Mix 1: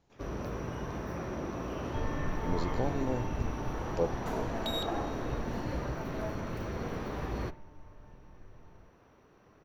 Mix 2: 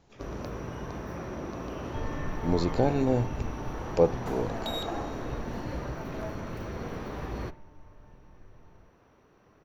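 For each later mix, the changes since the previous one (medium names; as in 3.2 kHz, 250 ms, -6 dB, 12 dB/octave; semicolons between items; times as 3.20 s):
speech +8.5 dB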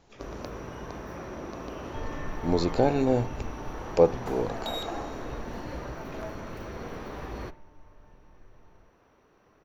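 speech +3.5 dB; master: add peaking EQ 120 Hz -5 dB 2.1 oct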